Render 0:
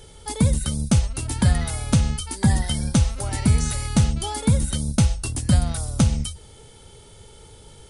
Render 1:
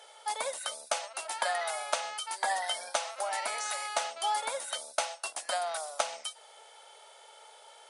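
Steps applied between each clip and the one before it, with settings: elliptic high-pass 630 Hz, stop band 80 dB; tilt EQ -3 dB/octave; trim +2.5 dB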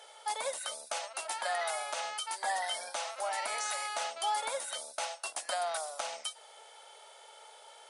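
peak limiter -23.5 dBFS, peak gain reduction 10.5 dB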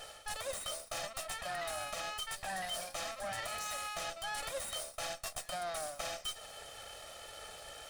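comb filter that takes the minimum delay 1.6 ms; reverse; compression 6:1, threshold -44 dBFS, peak gain reduction 12.5 dB; reverse; trim +6.5 dB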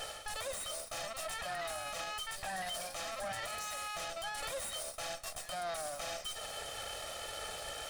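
peak limiter -38 dBFS, peak gain reduction 11 dB; trim +6.5 dB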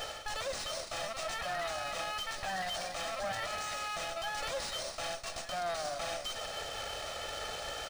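delay 298 ms -11 dB; decimation joined by straight lines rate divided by 3×; trim +3.5 dB

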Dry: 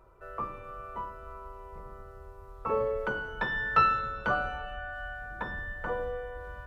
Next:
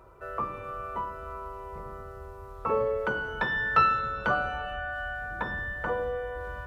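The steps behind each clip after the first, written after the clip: high-pass 47 Hz; in parallel at +0.5 dB: compression, threshold -38 dBFS, peak gain reduction 18 dB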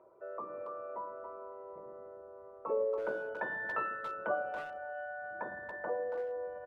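resonances exaggerated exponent 1.5; cabinet simulation 280–2600 Hz, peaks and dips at 340 Hz +4 dB, 610 Hz +9 dB, 1.3 kHz -8 dB; speakerphone echo 280 ms, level -7 dB; trim -8 dB

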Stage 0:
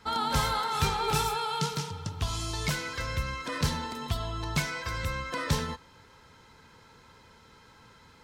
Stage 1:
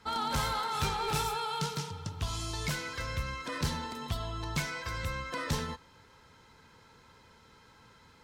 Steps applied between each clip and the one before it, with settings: one-sided clip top -24.5 dBFS; trim -3 dB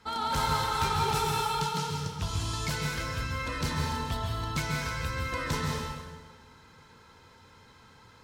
plate-style reverb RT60 1.4 s, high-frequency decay 0.85×, pre-delay 120 ms, DRR 0 dB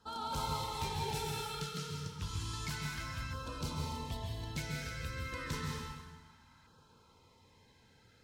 LFO notch saw down 0.3 Hz 410–2200 Hz; trim -7.5 dB

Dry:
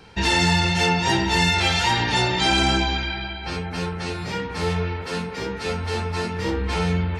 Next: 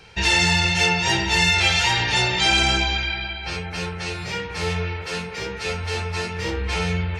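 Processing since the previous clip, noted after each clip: fifteen-band graphic EQ 250 Hz -11 dB, 1 kHz -3 dB, 2.5 kHz +5 dB, 6.3 kHz +4 dB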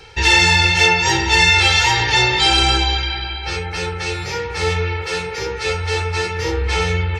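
reverse; upward compressor, threshold -26 dBFS; reverse; comb 2.3 ms, depth 72%; trim +2.5 dB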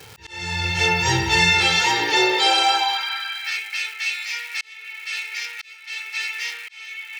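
crackle 500 per s -27 dBFS; high-pass sweep 110 Hz -> 2.3 kHz, 1.33–3.62 s; slow attack 760 ms; trim -4 dB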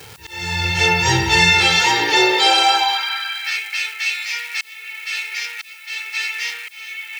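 added noise blue -54 dBFS; trim +3.5 dB

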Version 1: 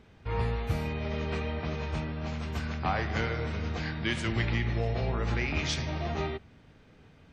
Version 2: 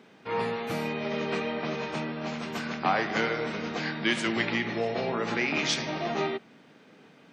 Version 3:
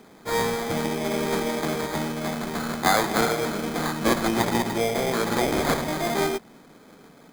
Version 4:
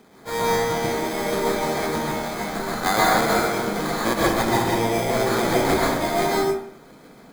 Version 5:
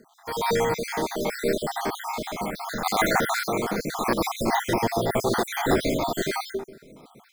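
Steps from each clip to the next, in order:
high-pass 190 Hz 24 dB/octave; trim +5 dB
sample-rate reducer 2.8 kHz, jitter 0%; trim +5 dB
plate-style reverb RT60 0.62 s, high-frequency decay 0.6×, pre-delay 115 ms, DRR -4.5 dB; trim -2.5 dB
random holes in the spectrogram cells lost 54%

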